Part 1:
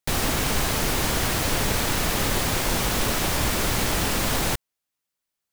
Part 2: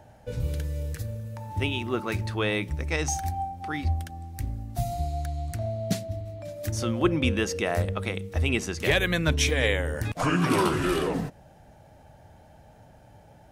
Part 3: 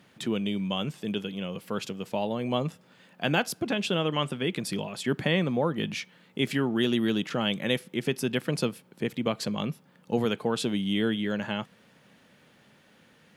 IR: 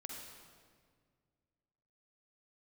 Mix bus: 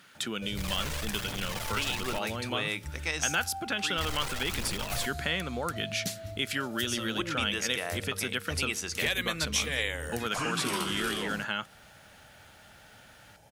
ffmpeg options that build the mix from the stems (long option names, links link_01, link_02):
-filter_complex "[0:a]aphaser=in_gain=1:out_gain=1:delay=2.2:decay=0.6:speed=1.2:type=triangular,aeval=exprs='(tanh(35.5*val(0)+0.7)-tanh(0.7))/35.5':channel_layout=same,adelay=500,volume=-2.5dB,asplit=3[link_01][link_02][link_03];[link_01]atrim=end=2.19,asetpts=PTS-STARTPTS,afade=type=out:start_time=2.186:duration=0.004:curve=hsin[link_04];[link_02]atrim=start=2.19:end=3.97,asetpts=PTS-STARTPTS,volume=0[link_05];[link_03]atrim=start=3.97,asetpts=PTS-STARTPTS,afade=type=in:duration=0.004:curve=hsin[link_06];[link_04][link_05][link_06]concat=n=3:v=0:a=1[link_07];[1:a]adelay=150,volume=-4dB[link_08];[2:a]equalizer=frequency=1400:width=3.9:gain=11,volume=-2.5dB[link_09];[link_08][link_09]amix=inputs=2:normalize=0,crystalizer=i=3.5:c=0,acompressor=threshold=-30dB:ratio=2,volume=0dB[link_10];[link_07][link_10]amix=inputs=2:normalize=0,lowpass=frequency=4000:poles=1,tiltshelf=frequency=970:gain=-4"